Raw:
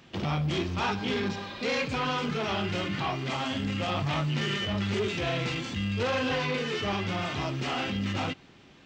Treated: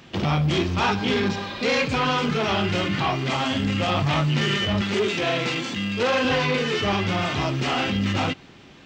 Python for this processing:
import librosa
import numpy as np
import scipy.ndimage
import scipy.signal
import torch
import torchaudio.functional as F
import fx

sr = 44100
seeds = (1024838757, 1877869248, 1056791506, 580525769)

y = fx.highpass(x, sr, hz=190.0, slope=12, at=(4.81, 6.25))
y = y * librosa.db_to_amplitude(7.0)